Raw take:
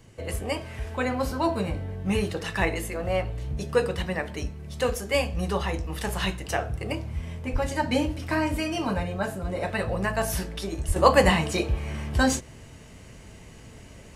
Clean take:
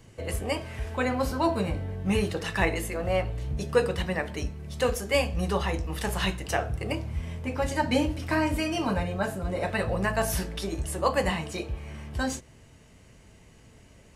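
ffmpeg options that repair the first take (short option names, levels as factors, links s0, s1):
-filter_complex "[0:a]asplit=3[s0][s1][s2];[s0]afade=t=out:st=7.52:d=0.02[s3];[s1]highpass=f=140:w=0.5412,highpass=f=140:w=1.3066,afade=t=in:st=7.52:d=0.02,afade=t=out:st=7.64:d=0.02[s4];[s2]afade=t=in:st=7.64:d=0.02[s5];[s3][s4][s5]amix=inputs=3:normalize=0,asplit=3[s6][s7][s8];[s6]afade=t=out:st=10.87:d=0.02[s9];[s7]highpass=f=140:w=0.5412,highpass=f=140:w=1.3066,afade=t=in:st=10.87:d=0.02,afade=t=out:st=10.99:d=0.02[s10];[s8]afade=t=in:st=10.99:d=0.02[s11];[s9][s10][s11]amix=inputs=3:normalize=0,asetnsamples=n=441:p=0,asendcmd='10.96 volume volume -7.5dB',volume=1"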